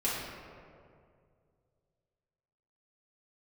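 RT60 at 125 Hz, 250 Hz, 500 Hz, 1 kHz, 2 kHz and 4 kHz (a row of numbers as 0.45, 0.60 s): 3.1, 2.4, 2.5, 2.0, 1.6, 1.1 s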